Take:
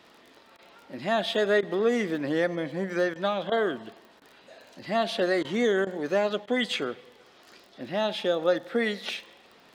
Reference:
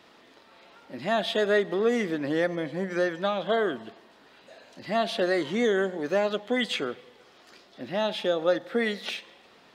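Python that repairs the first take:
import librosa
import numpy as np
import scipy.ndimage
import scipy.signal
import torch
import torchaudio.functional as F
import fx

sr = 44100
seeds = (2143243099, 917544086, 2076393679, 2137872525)

y = fx.fix_declick_ar(x, sr, threshold=6.5)
y = fx.fix_interpolate(y, sr, at_s=(0.57, 1.61, 3.14, 3.5, 4.2, 5.43, 5.85, 6.46), length_ms=15.0)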